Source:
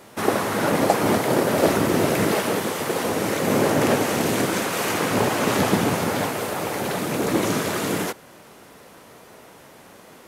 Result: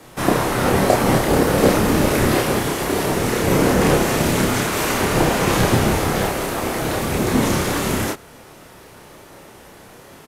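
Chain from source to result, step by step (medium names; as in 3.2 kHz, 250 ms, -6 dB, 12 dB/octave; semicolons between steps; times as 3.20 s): doubling 30 ms -3 dB; frequency shift -81 Hz; trim +2 dB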